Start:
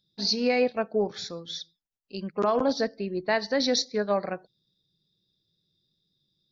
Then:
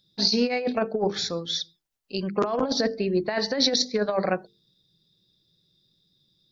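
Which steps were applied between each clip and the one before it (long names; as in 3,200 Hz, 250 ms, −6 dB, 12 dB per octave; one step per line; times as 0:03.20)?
mains-hum notches 50/100/150/200/250/300/350/400/450 Hz
compressor whose output falls as the input rises −27 dBFS, ratio −0.5
level +5 dB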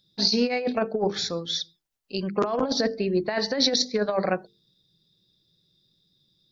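no processing that can be heard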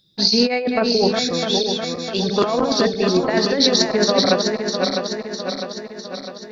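feedback delay that plays each chunk backwards 327 ms, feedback 74%, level −4.5 dB
level +5.5 dB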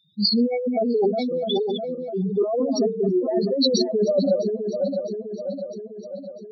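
expanding power law on the bin magnitudes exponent 4
level −2.5 dB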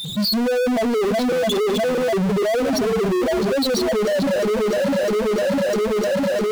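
parametric band 1,800 Hz −12.5 dB 0.81 octaves
power curve on the samples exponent 0.35
brickwall limiter −17 dBFS, peak gain reduction 8 dB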